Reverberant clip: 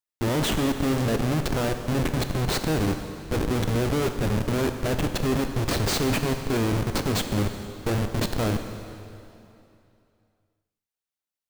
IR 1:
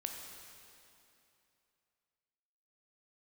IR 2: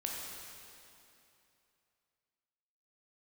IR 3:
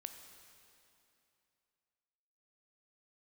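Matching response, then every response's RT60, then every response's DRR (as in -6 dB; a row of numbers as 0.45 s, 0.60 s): 3; 2.8 s, 2.8 s, 2.8 s; 2.0 dB, -2.0 dB, 6.5 dB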